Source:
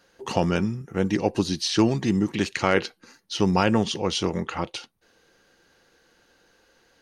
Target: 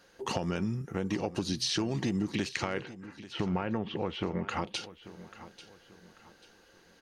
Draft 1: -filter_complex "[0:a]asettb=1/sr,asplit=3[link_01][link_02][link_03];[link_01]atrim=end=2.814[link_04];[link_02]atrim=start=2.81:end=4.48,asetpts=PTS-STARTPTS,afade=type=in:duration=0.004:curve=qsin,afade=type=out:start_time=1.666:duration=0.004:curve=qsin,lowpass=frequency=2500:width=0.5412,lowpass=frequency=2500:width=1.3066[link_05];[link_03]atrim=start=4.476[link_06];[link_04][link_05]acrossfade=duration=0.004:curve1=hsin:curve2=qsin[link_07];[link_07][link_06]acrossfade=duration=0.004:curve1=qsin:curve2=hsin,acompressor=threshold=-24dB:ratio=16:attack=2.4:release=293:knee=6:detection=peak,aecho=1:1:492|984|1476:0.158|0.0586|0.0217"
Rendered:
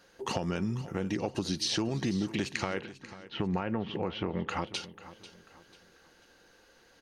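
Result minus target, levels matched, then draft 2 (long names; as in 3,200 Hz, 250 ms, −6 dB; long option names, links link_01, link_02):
echo 348 ms early
-filter_complex "[0:a]asettb=1/sr,asplit=3[link_01][link_02][link_03];[link_01]atrim=end=2.814[link_04];[link_02]atrim=start=2.81:end=4.48,asetpts=PTS-STARTPTS,afade=type=in:duration=0.004:curve=qsin,afade=type=out:start_time=1.666:duration=0.004:curve=qsin,lowpass=frequency=2500:width=0.5412,lowpass=frequency=2500:width=1.3066[link_05];[link_03]atrim=start=4.476[link_06];[link_04][link_05]acrossfade=duration=0.004:curve1=hsin:curve2=qsin[link_07];[link_07][link_06]acrossfade=duration=0.004:curve1=qsin:curve2=hsin,acompressor=threshold=-24dB:ratio=16:attack=2.4:release=293:knee=6:detection=peak,aecho=1:1:840|1680|2520:0.158|0.0586|0.0217"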